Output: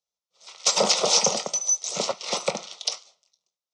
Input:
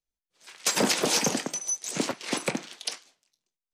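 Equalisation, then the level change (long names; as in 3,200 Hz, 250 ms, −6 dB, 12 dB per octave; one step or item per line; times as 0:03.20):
loudspeaker in its box 180–7,100 Hz, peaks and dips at 200 Hz +3 dB, 560 Hz +4 dB, 1,300 Hz +9 dB, 1,900 Hz +6 dB, 3,700 Hz +4 dB, 5,600 Hz +6 dB
phaser with its sweep stopped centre 690 Hz, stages 4
+4.0 dB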